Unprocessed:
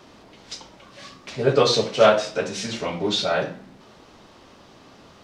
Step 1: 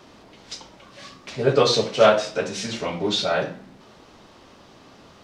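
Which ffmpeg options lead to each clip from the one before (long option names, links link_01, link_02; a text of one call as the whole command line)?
ffmpeg -i in.wav -af anull out.wav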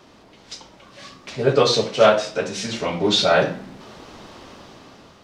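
ffmpeg -i in.wav -af "dynaudnorm=framelen=270:gausssize=7:maxgain=11dB,volume=-1dB" out.wav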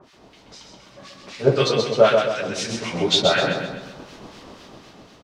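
ffmpeg -i in.wav -filter_complex "[0:a]acrossover=split=1300[link_01][link_02];[link_01]aeval=exprs='val(0)*(1-1/2+1/2*cos(2*PI*4*n/s))':channel_layout=same[link_03];[link_02]aeval=exprs='val(0)*(1-1/2-1/2*cos(2*PI*4*n/s))':channel_layout=same[link_04];[link_03][link_04]amix=inputs=2:normalize=0,aecho=1:1:130|260|390|520|650|780:0.562|0.259|0.119|0.0547|0.0252|0.0116,volume=2.5dB" out.wav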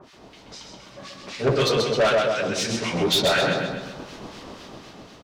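ffmpeg -i in.wav -af "asoftclip=type=tanh:threshold=-18dB,volume=2.5dB" out.wav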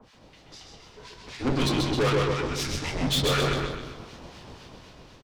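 ffmpeg -i in.wav -filter_complex "[0:a]asplit=5[link_01][link_02][link_03][link_04][link_05];[link_02]adelay=149,afreqshift=-72,volume=-10dB[link_06];[link_03]adelay=298,afreqshift=-144,volume=-18.6dB[link_07];[link_04]adelay=447,afreqshift=-216,volume=-27.3dB[link_08];[link_05]adelay=596,afreqshift=-288,volume=-35.9dB[link_09];[link_01][link_06][link_07][link_08][link_09]amix=inputs=5:normalize=0,aeval=exprs='0.266*(cos(1*acos(clip(val(0)/0.266,-1,1)))-cos(1*PI/2))+0.0596*(cos(4*acos(clip(val(0)/0.266,-1,1)))-cos(4*PI/2))':channel_layout=same,afreqshift=-140,volume=-5.5dB" out.wav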